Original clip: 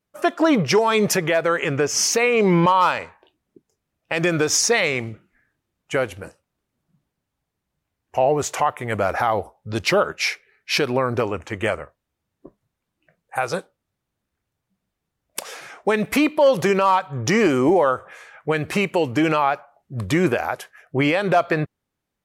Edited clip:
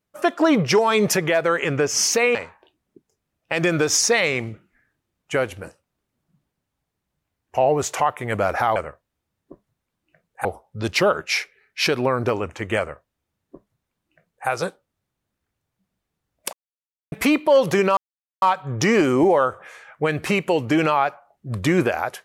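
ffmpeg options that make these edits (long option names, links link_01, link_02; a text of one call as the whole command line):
ffmpeg -i in.wav -filter_complex "[0:a]asplit=7[link_01][link_02][link_03][link_04][link_05][link_06][link_07];[link_01]atrim=end=2.352[link_08];[link_02]atrim=start=2.948:end=9.362[link_09];[link_03]atrim=start=11.698:end=13.392[link_10];[link_04]atrim=start=9.358:end=15.44,asetpts=PTS-STARTPTS,afade=type=out:start_time=6.078:duration=0.004:curve=hsin[link_11];[link_05]atrim=start=15.44:end=16.03,asetpts=PTS-STARTPTS,volume=0[link_12];[link_06]atrim=start=16.03:end=16.88,asetpts=PTS-STARTPTS,afade=type=in:duration=0.004:curve=hsin,afade=type=out:start_time=0.846:duration=0.004:curve=hsin,apad=pad_dur=0.45[link_13];[link_07]atrim=start=16.88,asetpts=PTS-STARTPTS,afade=type=in:duration=0.004:curve=hsin[link_14];[link_08][link_09]acrossfade=duration=0.004:curve1=hsin:curve2=hsin[link_15];[link_15][link_10]acrossfade=duration=0.004:curve1=hsin:curve2=hsin[link_16];[link_11][link_12][link_13][link_14]concat=n=4:v=0:a=1[link_17];[link_16][link_17]acrossfade=duration=0.004:curve1=hsin:curve2=hsin" out.wav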